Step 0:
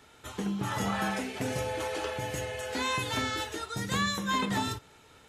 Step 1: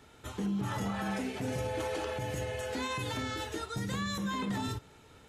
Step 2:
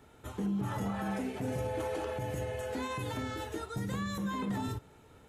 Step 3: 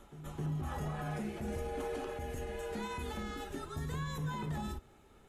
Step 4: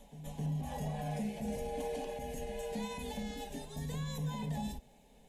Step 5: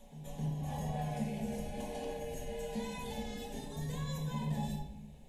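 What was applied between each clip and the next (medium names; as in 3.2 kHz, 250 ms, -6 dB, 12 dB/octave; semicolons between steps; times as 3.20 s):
bass shelf 480 Hz +7 dB; peak limiter -23 dBFS, peak gain reduction 8.5 dB; trim -3 dB
FFT filter 730 Hz 0 dB, 5 kHz -8 dB, 13 kHz 0 dB
frequency shift -47 Hz; pre-echo 263 ms -13 dB; trim -3.5 dB
static phaser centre 350 Hz, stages 6; trim +3 dB
simulated room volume 240 m³, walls mixed, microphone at 1 m; trim -2.5 dB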